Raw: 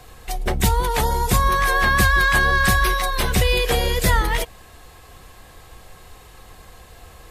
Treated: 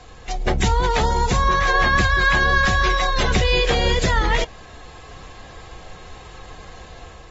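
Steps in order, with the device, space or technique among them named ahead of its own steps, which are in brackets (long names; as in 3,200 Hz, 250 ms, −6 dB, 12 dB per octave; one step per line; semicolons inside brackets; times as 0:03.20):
low-bitrate web radio (automatic gain control gain up to 4 dB; brickwall limiter −9 dBFS, peak gain reduction 6 dB; AAC 24 kbit/s 44,100 Hz)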